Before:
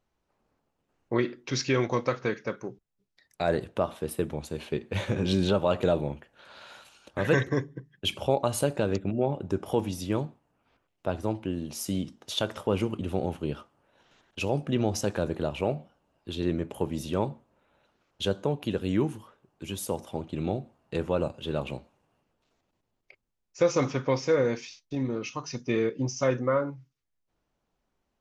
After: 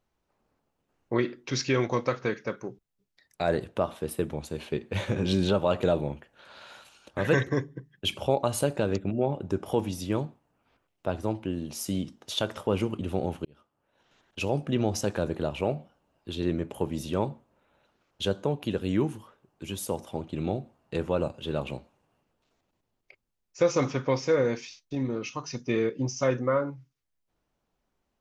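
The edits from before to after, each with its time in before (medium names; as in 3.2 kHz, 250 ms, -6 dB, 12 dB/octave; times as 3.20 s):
13.45–14.41 s: fade in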